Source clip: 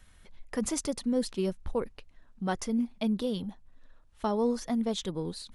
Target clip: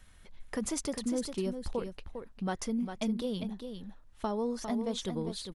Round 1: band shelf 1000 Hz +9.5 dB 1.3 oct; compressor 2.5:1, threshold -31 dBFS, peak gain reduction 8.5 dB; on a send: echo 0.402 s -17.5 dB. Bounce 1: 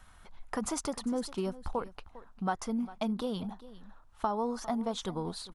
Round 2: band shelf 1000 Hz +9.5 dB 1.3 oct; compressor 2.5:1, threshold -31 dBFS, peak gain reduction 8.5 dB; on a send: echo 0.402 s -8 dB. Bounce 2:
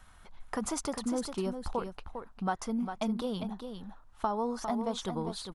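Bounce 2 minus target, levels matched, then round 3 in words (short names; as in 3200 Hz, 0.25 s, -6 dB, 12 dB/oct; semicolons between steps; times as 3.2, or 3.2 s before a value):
1000 Hz band +6.5 dB
compressor 2.5:1, threshold -31 dBFS, peak gain reduction 6 dB; on a send: echo 0.402 s -8 dB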